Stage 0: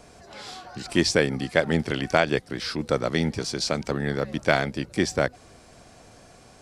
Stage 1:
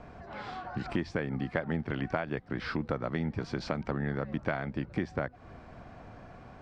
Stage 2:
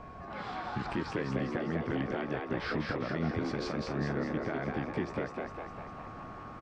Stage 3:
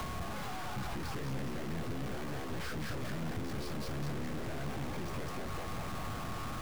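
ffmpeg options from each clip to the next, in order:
ffmpeg -i in.wav -af "lowpass=1600,equalizer=frequency=450:width=1.2:gain=-6,acompressor=threshold=-33dB:ratio=6,volume=4.5dB" out.wav
ffmpeg -i in.wav -filter_complex "[0:a]aeval=exprs='val(0)+0.00355*sin(2*PI*1100*n/s)':channel_layout=same,alimiter=limit=-23.5dB:level=0:latency=1:release=100,asplit=2[link_01][link_02];[link_02]asplit=8[link_03][link_04][link_05][link_06][link_07][link_08][link_09][link_10];[link_03]adelay=202,afreqshift=99,volume=-3dB[link_11];[link_04]adelay=404,afreqshift=198,volume=-8dB[link_12];[link_05]adelay=606,afreqshift=297,volume=-13.1dB[link_13];[link_06]adelay=808,afreqshift=396,volume=-18.1dB[link_14];[link_07]adelay=1010,afreqshift=495,volume=-23.1dB[link_15];[link_08]adelay=1212,afreqshift=594,volume=-28.2dB[link_16];[link_09]adelay=1414,afreqshift=693,volume=-33.2dB[link_17];[link_10]adelay=1616,afreqshift=792,volume=-38.3dB[link_18];[link_11][link_12][link_13][link_14][link_15][link_16][link_17][link_18]amix=inputs=8:normalize=0[link_19];[link_01][link_19]amix=inputs=2:normalize=0" out.wav
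ffmpeg -i in.wav -filter_complex "[0:a]aeval=exprs='val(0)+0.5*0.02*sgn(val(0))':channel_layout=same,aeval=exprs='(tanh(70.8*val(0)+0.5)-tanh(0.5))/70.8':channel_layout=same,acrossover=split=170[link_01][link_02];[link_02]acompressor=threshold=-46dB:ratio=5[link_03];[link_01][link_03]amix=inputs=2:normalize=0,volume=5.5dB" out.wav

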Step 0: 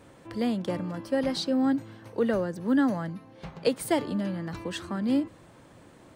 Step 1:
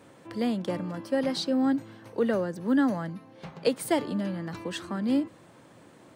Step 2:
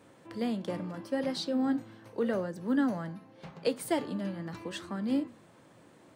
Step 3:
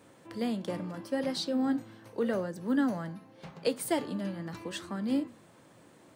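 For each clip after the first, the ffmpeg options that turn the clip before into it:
ffmpeg -i in.wav -af "highpass=120" out.wav
ffmpeg -i in.wav -af "flanger=delay=9.8:depth=9.4:regen=-75:speed=0.8:shape=sinusoidal" out.wav
ffmpeg -i in.wav -af "highshelf=frequency=5800:gain=5" out.wav

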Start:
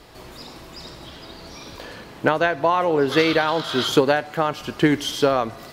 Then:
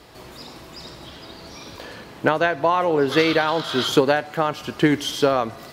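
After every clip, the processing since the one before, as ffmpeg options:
ffmpeg -i in.wav -af "highpass=53" out.wav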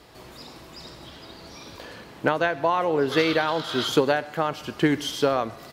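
ffmpeg -i in.wav -af "aecho=1:1:131:0.075,volume=-3.5dB" out.wav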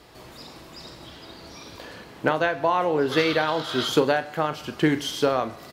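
ffmpeg -i in.wav -filter_complex "[0:a]asplit=2[link_01][link_02];[link_02]adelay=39,volume=-11.5dB[link_03];[link_01][link_03]amix=inputs=2:normalize=0" out.wav

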